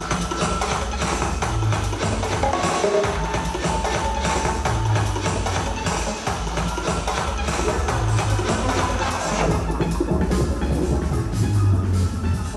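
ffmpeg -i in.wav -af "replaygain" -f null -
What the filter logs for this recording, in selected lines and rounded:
track_gain = +5.5 dB
track_peak = 0.338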